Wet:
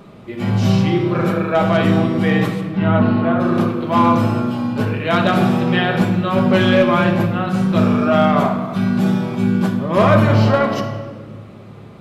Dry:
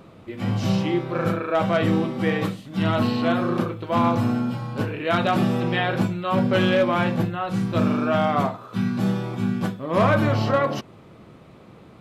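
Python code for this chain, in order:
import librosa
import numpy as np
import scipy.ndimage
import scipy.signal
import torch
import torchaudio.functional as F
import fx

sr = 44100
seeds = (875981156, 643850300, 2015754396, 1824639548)

y = fx.lowpass(x, sr, hz=fx.line((2.6, 2300.0), (3.39, 1500.0)), slope=12, at=(2.6, 3.39), fade=0.02)
y = fx.room_shoebox(y, sr, seeds[0], volume_m3=2100.0, walls='mixed', distance_m=1.3)
y = y * librosa.db_to_amplitude(4.0)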